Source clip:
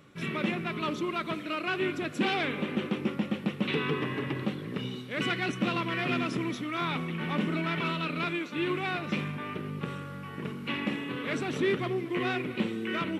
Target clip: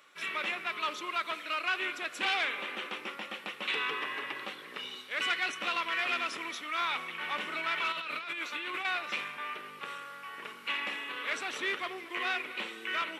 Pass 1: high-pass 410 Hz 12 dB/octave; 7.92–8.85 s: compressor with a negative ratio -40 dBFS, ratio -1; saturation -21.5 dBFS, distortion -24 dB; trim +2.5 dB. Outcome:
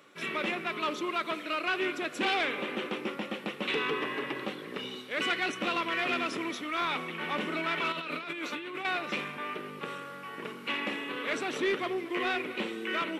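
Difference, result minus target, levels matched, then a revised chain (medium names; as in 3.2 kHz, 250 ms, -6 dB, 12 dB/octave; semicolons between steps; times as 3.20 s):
500 Hz band +8.0 dB
high-pass 910 Hz 12 dB/octave; 7.92–8.85 s: compressor with a negative ratio -40 dBFS, ratio -1; saturation -21.5 dBFS, distortion -27 dB; trim +2.5 dB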